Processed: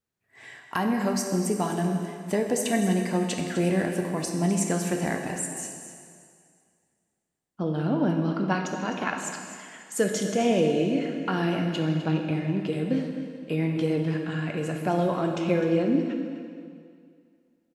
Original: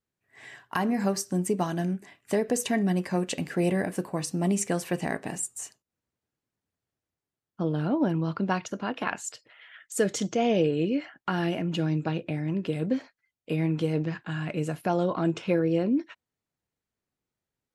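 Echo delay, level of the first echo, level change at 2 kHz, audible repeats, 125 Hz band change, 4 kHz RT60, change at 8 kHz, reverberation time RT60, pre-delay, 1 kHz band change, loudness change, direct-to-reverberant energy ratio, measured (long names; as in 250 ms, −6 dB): 255 ms, −13.5 dB, +2.0 dB, 1, +1.5 dB, 2.1 s, +2.0 dB, 2.2 s, 4 ms, +2.0 dB, +1.5 dB, 2.5 dB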